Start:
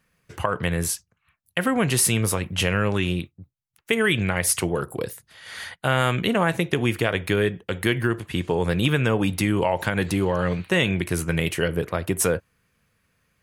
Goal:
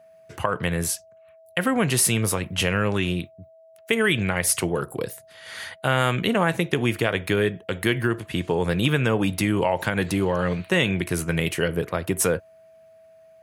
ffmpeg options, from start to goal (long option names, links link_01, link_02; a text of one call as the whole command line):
ffmpeg -i in.wav -af "aeval=exprs='val(0)+0.00355*sin(2*PI*650*n/s)':channel_layout=same,highpass=83" out.wav